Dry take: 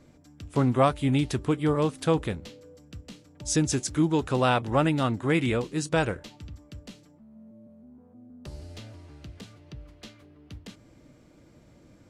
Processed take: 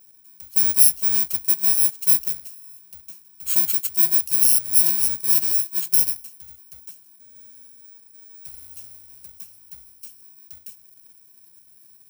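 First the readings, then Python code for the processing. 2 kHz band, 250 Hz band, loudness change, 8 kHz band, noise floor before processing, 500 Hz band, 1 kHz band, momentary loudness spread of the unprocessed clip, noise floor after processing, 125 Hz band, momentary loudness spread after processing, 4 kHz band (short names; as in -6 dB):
-7.5 dB, -19.0 dB, +9.5 dB, +15.5 dB, -56 dBFS, under -20 dB, under -15 dB, 22 LU, -53 dBFS, -17.0 dB, 8 LU, +5.0 dB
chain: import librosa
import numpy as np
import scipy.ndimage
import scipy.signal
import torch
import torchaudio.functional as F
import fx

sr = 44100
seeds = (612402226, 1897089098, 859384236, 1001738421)

y = fx.bit_reversed(x, sr, seeds[0], block=64)
y = librosa.effects.preemphasis(y, coef=0.9, zi=[0.0])
y = fx.notch(y, sr, hz=890.0, q=12.0)
y = y * 10.0 ** (4.0 / 20.0)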